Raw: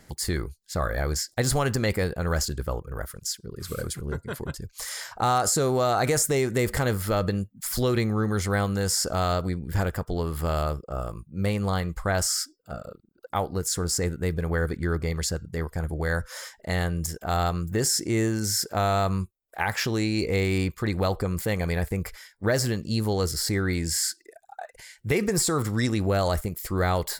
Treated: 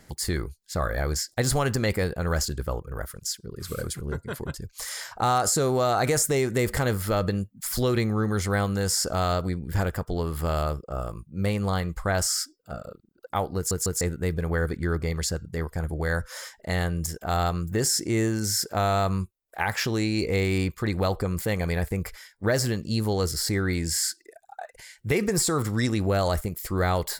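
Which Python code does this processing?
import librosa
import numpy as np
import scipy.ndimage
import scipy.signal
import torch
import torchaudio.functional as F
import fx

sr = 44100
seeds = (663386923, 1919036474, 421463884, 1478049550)

y = fx.edit(x, sr, fx.stutter_over(start_s=13.56, slice_s=0.15, count=3), tone=tone)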